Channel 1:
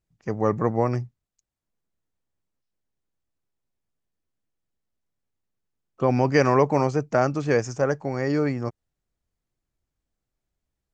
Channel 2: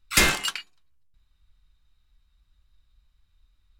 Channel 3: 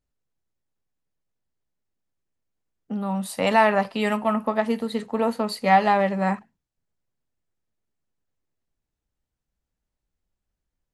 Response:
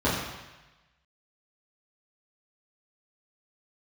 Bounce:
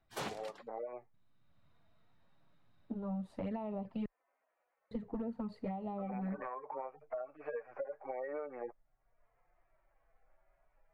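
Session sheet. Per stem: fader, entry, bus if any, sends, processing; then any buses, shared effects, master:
-2.5 dB, 0.00 s, bus A, no send, harmonic-percussive separation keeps harmonic; Chebyshev band-pass 580–2300 Hz, order 3; three bands compressed up and down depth 70%
+0.5 dB, 0.00 s, no bus, no send, spectral gate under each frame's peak -15 dB weak; high-pass 200 Hz 12 dB/octave; treble shelf 6 kHz -7.5 dB; auto duck -8 dB, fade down 0.45 s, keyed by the first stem
-12.0 dB, 0.00 s, muted 4.06–4.91 s, bus A, no send, low-pass 2.1 kHz 6 dB/octave; touch-sensitive flanger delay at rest 7.3 ms, full sweep at -17 dBFS
bus A: 0.0 dB, compression 6:1, threshold -40 dBFS, peak gain reduction 12.5 dB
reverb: none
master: gain riding within 5 dB 2 s; tilt EQ -4 dB/octave; compression 2:1, threshold -39 dBFS, peak gain reduction 5.5 dB

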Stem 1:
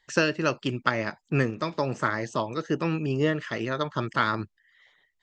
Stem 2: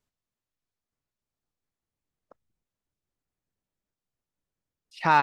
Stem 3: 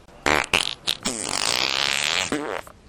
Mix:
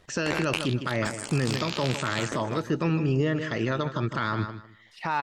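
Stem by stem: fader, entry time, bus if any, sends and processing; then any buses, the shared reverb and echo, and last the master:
+1.5 dB, 0.00 s, no send, echo send -12.5 dB, bass shelf 150 Hz +8 dB
-3.0 dB, 0.00 s, no send, no echo send, none
-7.5 dB, 0.00 s, no send, no echo send, AM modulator 91 Hz, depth 45%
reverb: none
echo: feedback delay 153 ms, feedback 21%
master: peak limiter -16 dBFS, peak gain reduction 11 dB

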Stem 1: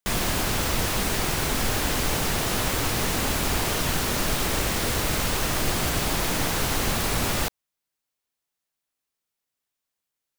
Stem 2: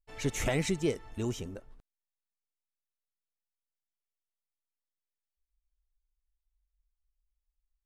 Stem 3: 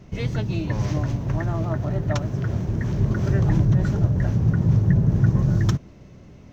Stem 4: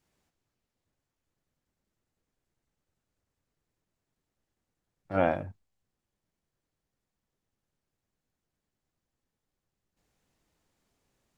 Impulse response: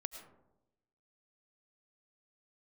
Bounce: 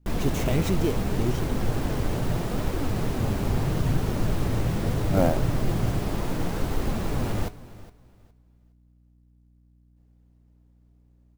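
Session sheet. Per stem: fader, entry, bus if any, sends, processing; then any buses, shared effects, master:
-2.0 dB, 0.00 s, no send, echo send -18 dB, flange 0.74 Hz, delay 2 ms, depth 8.5 ms, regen +66%
-2.0 dB, 0.00 s, no send, no echo send, high-order bell 5.3 kHz +10.5 dB 2.5 oct
-17.5 dB, 0.20 s, no send, no echo send, none
-1.0 dB, 0.00 s, no send, no echo send, hum 60 Hz, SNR 23 dB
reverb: none
echo: feedback delay 413 ms, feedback 23%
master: tilt shelf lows +8 dB, about 920 Hz; sampling jitter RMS 0.021 ms

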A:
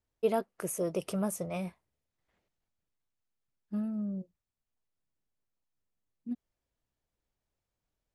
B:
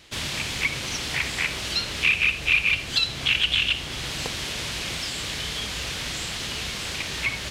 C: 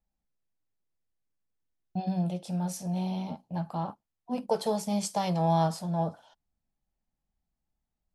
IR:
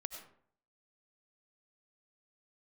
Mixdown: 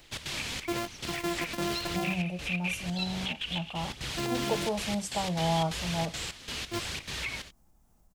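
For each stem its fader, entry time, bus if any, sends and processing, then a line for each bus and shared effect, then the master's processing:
+2.5 dB, 0.45 s, bus A, no send, sorted samples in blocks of 128 samples
-5.5 dB, 0.00 s, bus A, no send, compression, threshold -23 dBFS, peak gain reduction 8 dB; short-mantissa float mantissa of 6-bit; trance gate "xx.xxxx.xx..xx.x" 176 bpm -12 dB
-3.0 dB, 0.00 s, no bus, no send, high-order bell 2.8 kHz -9 dB; upward compressor, threshold -41 dBFS
bus A: 0.0 dB, phaser 1 Hz, delay 4.5 ms, feedback 29%; peak limiter -23.5 dBFS, peak gain reduction 10.5 dB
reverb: none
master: none

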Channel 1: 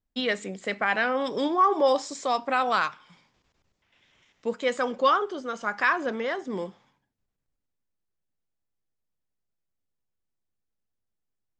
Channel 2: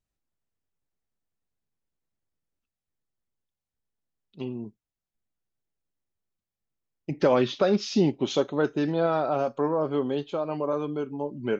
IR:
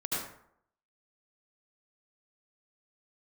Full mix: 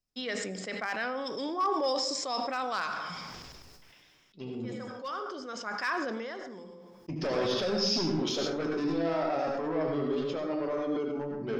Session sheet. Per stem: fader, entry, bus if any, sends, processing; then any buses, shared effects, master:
-10.0 dB, 0.00 s, send -19 dB, overload inside the chain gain 13.5 dB; auto duck -22 dB, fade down 0.95 s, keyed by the second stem
-4.0 dB, 0.00 s, send -3 dB, saturation -24 dBFS, distortion -9 dB; flange 0.66 Hz, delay 8.8 ms, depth 5.5 ms, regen +51%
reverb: on, RT60 0.70 s, pre-delay 67 ms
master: peaking EQ 5.2 kHz +14 dB 0.25 oct; hum notches 50/100/150/200 Hz; decay stretcher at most 23 dB/s

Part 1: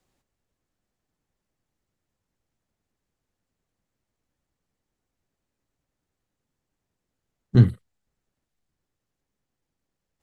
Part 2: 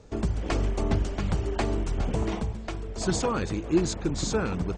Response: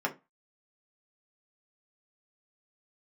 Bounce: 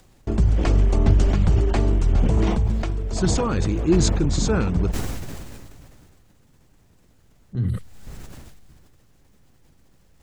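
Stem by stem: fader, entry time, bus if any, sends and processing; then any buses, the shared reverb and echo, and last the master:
-17.0 dB, 0.00 s, no send, upward compressor, threshold -18 dBFS
+1.0 dB, 0.15 s, no send, gate with hold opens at -32 dBFS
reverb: none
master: bass shelf 200 Hz +9 dB; decay stretcher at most 25 dB/s

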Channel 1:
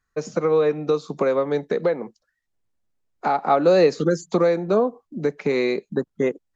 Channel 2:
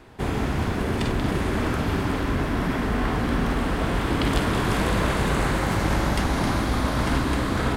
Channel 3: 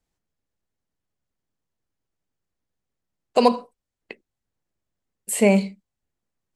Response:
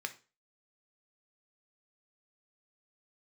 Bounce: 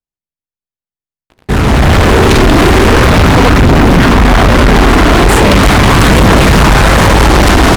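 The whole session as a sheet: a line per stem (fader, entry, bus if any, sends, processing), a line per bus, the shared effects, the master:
mute
-2.5 dB, 1.30 s, no send, level rider gain up to 13 dB; phaser 0.4 Hz, delay 3.1 ms, feedback 38%
-6.0 dB, 0.00 s, no send, none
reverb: none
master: waveshaping leveller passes 5; loudspeaker Doppler distortion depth 0.45 ms

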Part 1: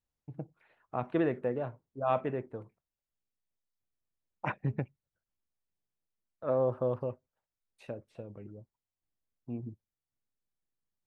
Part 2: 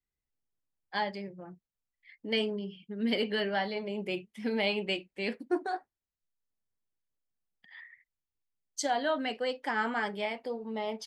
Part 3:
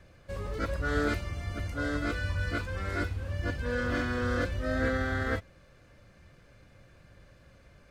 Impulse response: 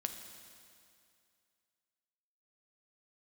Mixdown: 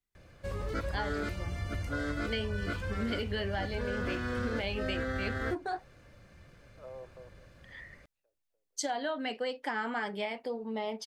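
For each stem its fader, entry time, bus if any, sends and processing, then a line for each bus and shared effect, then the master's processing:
-17.0 dB, 0.35 s, no send, inverse Chebyshev high-pass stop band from 150 Hz, stop band 50 dB; auto duck -21 dB, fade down 0.50 s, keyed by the second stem
+1.0 dB, 0.00 s, no send, none
+0.5 dB, 0.15 s, no send, none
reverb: none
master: compression, threshold -30 dBFS, peak gain reduction 8.5 dB

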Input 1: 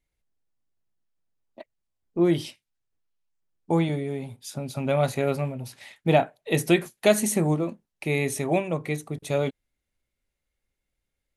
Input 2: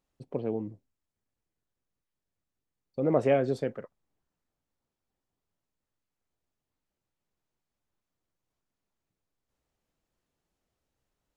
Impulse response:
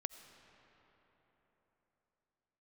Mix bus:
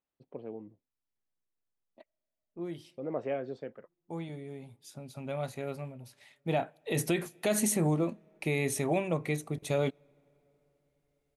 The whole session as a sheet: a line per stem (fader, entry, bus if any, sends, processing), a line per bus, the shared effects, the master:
6.39 s -13 dB -> 6.85 s -3 dB, 0.40 s, send -22 dB, auto duck -8 dB, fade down 1.00 s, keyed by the second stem
-9.0 dB, 0.00 s, no send, low-pass 3.9 kHz 12 dB/octave; bass shelf 120 Hz -12 dB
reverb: on, RT60 4.2 s, pre-delay 45 ms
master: peak limiter -18.5 dBFS, peak gain reduction 9.5 dB

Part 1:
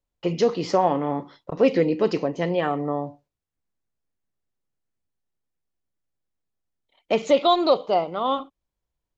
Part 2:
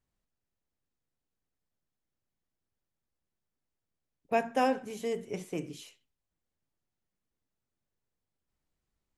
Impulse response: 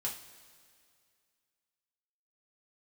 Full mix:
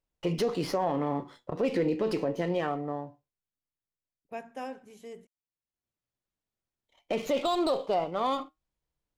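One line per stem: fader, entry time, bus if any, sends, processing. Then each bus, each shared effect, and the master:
+2.0 dB, 0.00 s, no send, flange 0.23 Hz, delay 6.2 ms, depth 3 ms, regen +78%; sliding maximum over 3 samples; auto duck -19 dB, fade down 1.95 s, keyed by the second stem
-11.5 dB, 0.00 s, muted 5.27–6.14 s, no send, none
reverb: none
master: peak limiter -19 dBFS, peak gain reduction 9.5 dB

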